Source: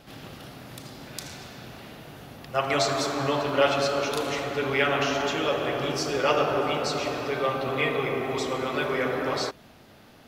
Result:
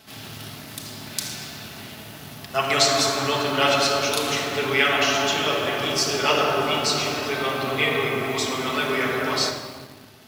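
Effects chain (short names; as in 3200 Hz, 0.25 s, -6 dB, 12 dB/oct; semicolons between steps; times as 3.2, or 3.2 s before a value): HPF 79 Hz; high shelf 2700 Hz +10 dB; shoebox room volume 1900 m³, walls mixed, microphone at 1.5 m; in parallel at -8 dB: requantised 6-bit, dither none; on the sum: thirty-one-band EQ 100 Hz +7 dB, 160 Hz -4 dB, 500 Hz -7 dB; gain -2.5 dB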